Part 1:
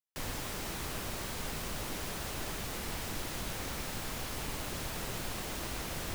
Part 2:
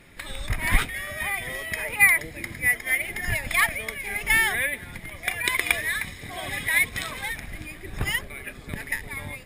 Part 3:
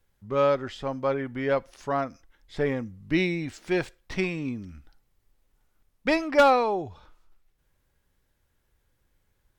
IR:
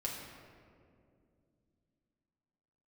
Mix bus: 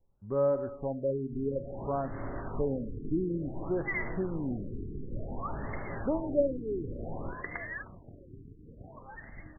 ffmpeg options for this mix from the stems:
-filter_complex "[0:a]flanger=delay=16.5:depth=3.6:speed=0.37,adelay=1150,volume=2.5dB,asplit=2[a][b];[b]volume=-6.5dB[c];[1:a]adelay=1850,volume=-12dB,afade=t=in:st=3.85:d=0.24:silence=0.375837,asplit=2[d][e];[e]volume=-10dB[f];[2:a]lowpass=1k,volume=-2.5dB,asplit=3[g][h][i];[h]volume=-14.5dB[j];[i]apad=whole_len=321687[k];[a][k]sidechaincompress=threshold=-41dB:ratio=8:attack=16:release=218[l];[l][g]amix=inputs=2:normalize=0,lowpass=f=2.1k:w=0.5412,lowpass=f=2.1k:w=1.3066,acompressor=threshold=-36dB:ratio=1.5,volume=0dB[m];[3:a]atrim=start_sample=2205[n];[c][f][j]amix=inputs=3:normalize=0[o];[o][n]afir=irnorm=-1:irlink=0[p];[d][m][p]amix=inputs=3:normalize=0,afftfilt=real='re*lt(b*sr/1024,440*pow(2200/440,0.5+0.5*sin(2*PI*0.56*pts/sr)))':imag='im*lt(b*sr/1024,440*pow(2200/440,0.5+0.5*sin(2*PI*0.56*pts/sr)))':win_size=1024:overlap=0.75"

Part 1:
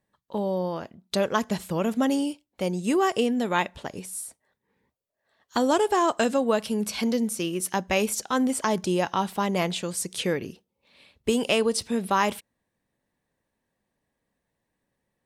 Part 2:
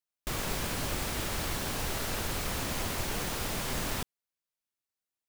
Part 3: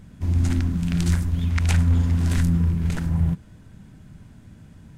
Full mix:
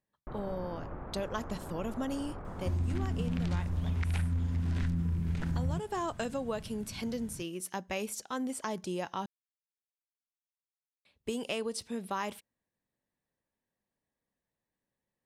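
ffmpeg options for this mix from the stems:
-filter_complex "[0:a]volume=-10.5dB,asplit=3[a][b][c];[a]atrim=end=9.26,asetpts=PTS-STARTPTS,afade=t=out:st=9.256:d=0.004:c=hsin[d];[b]atrim=start=9.26:end=11.05,asetpts=PTS-STARTPTS,volume=0[e];[c]atrim=start=11.05,asetpts=PTS-STARTPTS,afade=t=in:d=0.004:c=hsin[f];[d][e][f]concat=n=3:v=0:a=1[g];[1:a]lowpass=f=1.3k:w=0.5412,lowpass=f=1.3k:w=1.3066,volume=-6.5dB[h];[2:a]acrossover=split=4800[i][j];[j]acompressor=threshold=-53dB:ratio=4:attack=1:release=60[k];[i][k]amix=inputs=2:normalize=0,adelay=2450,volume=-2dB[l];[g][h][l]amix=inputs=3:normalize=0,acompressor=threshold=-29dB:ratio=5"

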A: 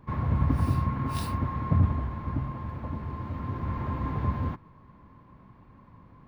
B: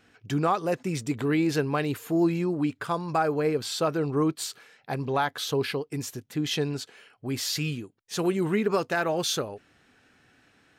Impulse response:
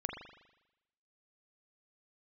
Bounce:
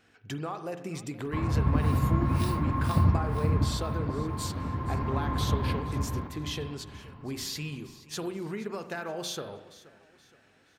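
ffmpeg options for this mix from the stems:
-filter_complex "[0:a]adelay=1250,volume=-0.5dB,asplit=2[a][b];[b]volume=-3.5dB[c];[1:a]bandreject=f=60:t=h:w=6,bandreject=f=120:t=h:w=6,bandreject=f=180:t=h:w=6,bandreject=f=240:t=h:w=6,bandreject=f=300:t=h:w=6,acompressor=threshold=-30dB:ratio=6,volume=-6.5dB,asplit=3[d][e][f];[e]volume=-4dB[g];[f]volume=-14.5dB[h];[2:a]atrim=start_sample=2205[i];[g][i]afir=irnorm=-1:irlink=0[j];[c][h]amix=inputs=2:normalize=0,aecho=0:1:474|948|1422|1896|2370:1|0.37|0.137|0.0507|0.0187[k];[a][d][j][k]amix=inputs=4:normalize=0"

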